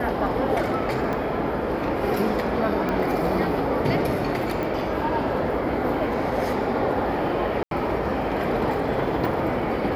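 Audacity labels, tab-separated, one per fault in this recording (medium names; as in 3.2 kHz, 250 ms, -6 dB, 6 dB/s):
1.130000	1.130000	dropout 2.3 ms
2.890000	2.890000	pop -15 dBFS
4.630000	4.630000	pop
7.630000	7.710000	dropout 82 ms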